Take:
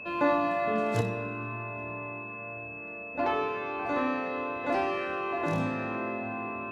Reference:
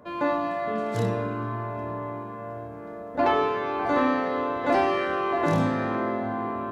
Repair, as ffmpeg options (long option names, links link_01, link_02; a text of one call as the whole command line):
ffmpeg -i in.wav -af "bandreject=frequency=2600:width=30,asetnsamples=nb_out_samples=441:pad=0,asendcmd='1.01 volume volume 6.5dB',volume=0dB" out.wav